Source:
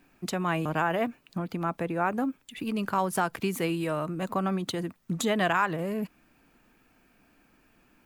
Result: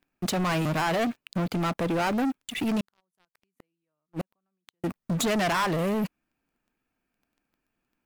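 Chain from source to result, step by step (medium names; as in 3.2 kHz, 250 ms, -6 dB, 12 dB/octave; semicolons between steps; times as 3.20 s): 2.80–4.84 s: inverted gate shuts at -24 dBFS, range -36 dB; waveshaping leveller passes 5; trim -8 dB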